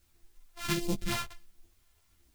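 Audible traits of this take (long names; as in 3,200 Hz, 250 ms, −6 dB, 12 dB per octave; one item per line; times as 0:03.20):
a buzz of ramps at a fixed pitch in blocks of 128 samples
phaser sweep stages 2, 1.4 Hz, lowest notch 260–1,500 Hz
a quantiser's noise floor 12 bits, dither triangular
a shimmering, thickened sound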